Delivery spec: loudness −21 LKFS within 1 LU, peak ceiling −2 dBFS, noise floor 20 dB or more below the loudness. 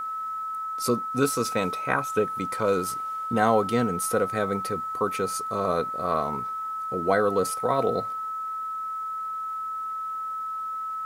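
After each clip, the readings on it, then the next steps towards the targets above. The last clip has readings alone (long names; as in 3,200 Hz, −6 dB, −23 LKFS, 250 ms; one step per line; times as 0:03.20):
interfering tone 1,300 Hz; level of the tone −29 dBFS; integrated loudness −27.0 LKFS; sample peak −7.0 dBFS; target loudness −21.0 LKFS
→ notch filter 1,300 Hz, Q 30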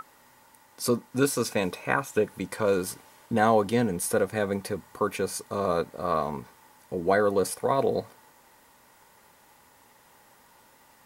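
interfering tone none found; integrated loudness −27.0 LKFS; sample peak −7.0 dBFS; target loudness −21.0 LKFS
→ level +6 dB
brickwall limiter −2 dBFS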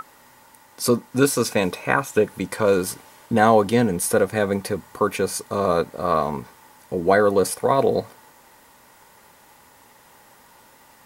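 integrated loudness −21.0 LKFS; sample peak −2.0 dBFS; background noise floor −52 dBFS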